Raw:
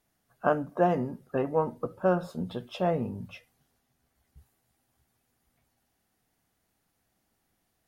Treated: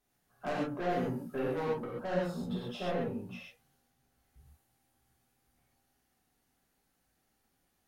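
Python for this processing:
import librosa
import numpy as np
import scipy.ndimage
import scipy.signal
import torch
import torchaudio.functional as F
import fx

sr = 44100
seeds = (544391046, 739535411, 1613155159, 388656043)

y = fx.high_shelf(x, sr, hz=4600.0, db=9.5, at=(0.89, 1.63))
y = fx.highpass(y, sr, hz=170.0, slope=6, at=(2.91, 3.34))
y = 10.0 ** (-27.0 / 20.0) * np.tanh(y / 10.0 ** (-27.0 / 20.0))
y = fx.rev_gated(y, sr, seeds[0], gate_ms=160, shape='flat', drr_db=-6.0)
y = F.gain(torch.from_numpy(y), -7.5).numpy()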